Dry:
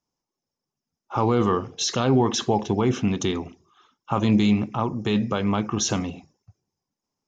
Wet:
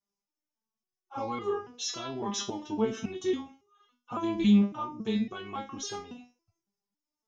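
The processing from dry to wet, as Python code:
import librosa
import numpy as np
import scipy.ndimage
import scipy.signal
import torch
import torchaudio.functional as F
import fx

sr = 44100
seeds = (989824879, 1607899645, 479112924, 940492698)

y = fx.resonator_held(x, sr, hz=3.6, low_hz=200.0, high_hz=410.0)
y = y * librosa.db_to_amplitude(5.0)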